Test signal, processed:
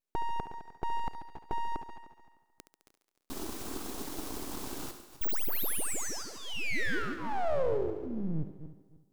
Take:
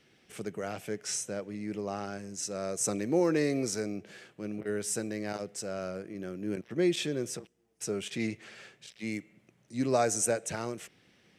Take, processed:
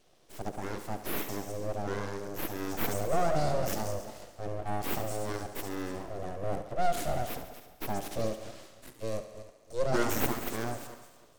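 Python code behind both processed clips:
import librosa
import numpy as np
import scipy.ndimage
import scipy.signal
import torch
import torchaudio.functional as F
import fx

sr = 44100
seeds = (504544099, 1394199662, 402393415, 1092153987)

p1 = fx.reverse_delay_fb(x, sr, ms=152, feedback_pct=45, wet_db=-13.5)
p2 = 10.0 ** (-29.5 / 20.0) * np.tanh(p1 / 10.0 ** (-29.5 / 20.0))
p3 = p1 + (p2 * 10.0 ** (-5.5 / 20.0))
p4 = fx.fixed_phaser(p3, sr, hz=540.0, stages=6)
p5 = np.abs(p4)
p6 = fx.peak_eq(p5, sr, hz=320.0, db=10.5, octaves=1.7)
y = fx.echo_thinned(p6, sr, ms=70, feedback_pct=69, hz=210.0, wet_db=-11.0)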